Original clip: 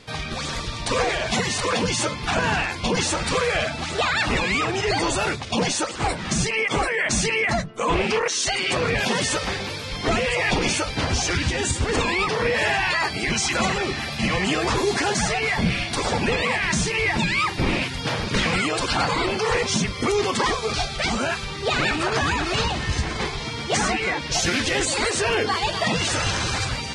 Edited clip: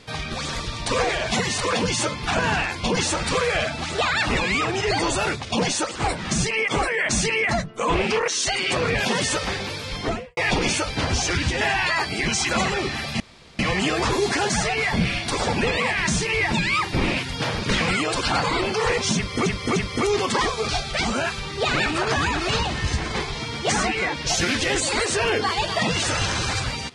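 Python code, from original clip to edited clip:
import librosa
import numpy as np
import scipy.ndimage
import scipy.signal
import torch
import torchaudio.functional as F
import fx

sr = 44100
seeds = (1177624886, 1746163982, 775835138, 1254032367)

y = fx.studio_fade_out(x, sr, start_s=9.95, length_s=0.42)
y = fx.edit(y, sr, fx.cut(start_s=11.61, length_s=1.04),
    fx.insert_room_tone(at_s=14.24, length_s=0.39),
    fx.repeat(start_s=19.81, length_s=0.3, count=3), tone=tone)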